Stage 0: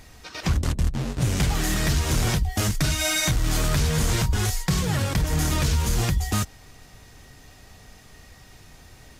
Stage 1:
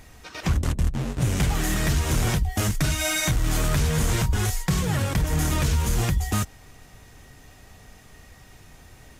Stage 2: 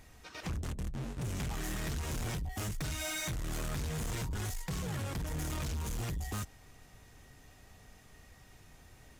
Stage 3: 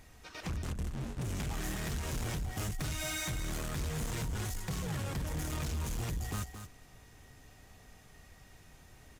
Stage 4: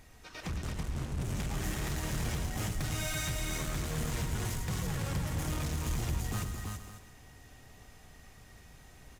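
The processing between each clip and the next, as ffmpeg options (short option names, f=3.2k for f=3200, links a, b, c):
-af "equalizer=f=4.6k:t=o:w=0.78:g=-4.5"
-af "asoftclip=type=tanh:threshold=-24.5dB,volume=-8.5dB"
-af "aecho=1:1:221:0.335"
-af "aecho=1:1:110|332|461:0.376|0.631|0.2"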